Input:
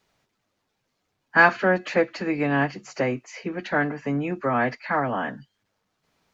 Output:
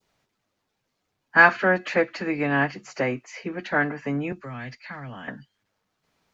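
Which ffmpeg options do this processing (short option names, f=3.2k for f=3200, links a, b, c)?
-filter_complex "[0:a]adynamicequalizer=threshold=0.0251:dfrequency=1800:dqfactor=0.81:tfrequency=1800:tqfactor=0.81:attack=5:release=100:ratio=0.375:range=2:mode=boostabove:tftype=bell,asettb=1/sr,asplit=3[a][b][c];[a]atrim=end=4.324[d];[b]atrim=start=4.32:end=5.28,asetpts=PTS-STARTPTS,afade=t=in:d=0.004:c=qsin,afade=t=out:st=0.956:d=0.004:c=qsin,acrossover=split=170|3000[e][f][g];[f]acompressor=threshold=-40dB:ratio=5[h];[e][h][g]amix=inputs=3:normalize=0[i];[c]atrim=start=5.276[j];[d][i]acrossfade=d=0.004:c1=hsin:c2=qsin[k];[k][j]acrossfade=d=0.004:c1=qsin:c2=hsin,volume=-1.5dB"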